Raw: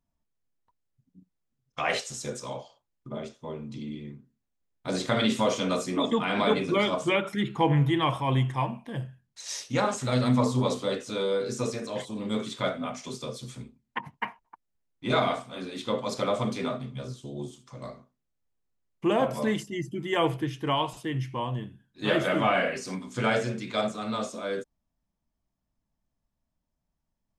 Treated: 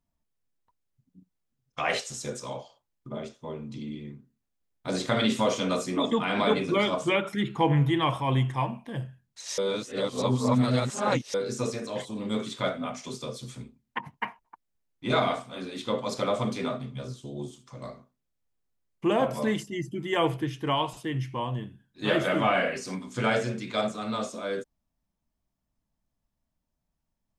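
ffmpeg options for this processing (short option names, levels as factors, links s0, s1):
-filter_complex "[0:a]asplit=3[s0][s1][s2];[s0]atrim=end=9.582[s3];[s1]atrim=start=9.578:end=11.342,asetpts=PTS-STARTPTS,areverse[s4];[s2]atrim=start=11.338[s5];[s3][s4]acrossfade=d=0.004:c1=hsin:c2=hsin[s6];[s6][s5]acrossfade=d=0.004:c1=hsin:c2=hsin"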